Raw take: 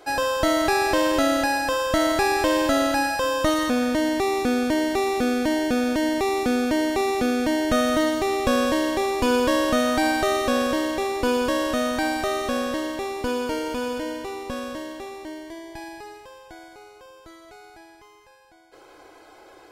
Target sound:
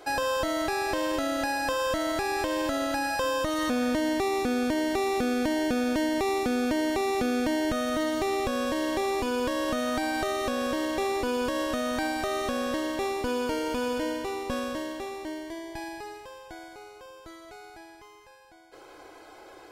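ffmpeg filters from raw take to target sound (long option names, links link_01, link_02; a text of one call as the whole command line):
ffmpeg -i in.wav -af "alimiter=limit=-19.5dB:level=0:latency=1:release=297" out.wav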